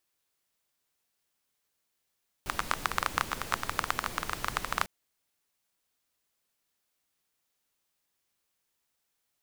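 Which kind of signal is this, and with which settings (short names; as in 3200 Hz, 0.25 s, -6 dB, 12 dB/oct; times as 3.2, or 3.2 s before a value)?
rain from filtered ticks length 2.40 s, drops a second 15, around 1200 Hz, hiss -6.5 dB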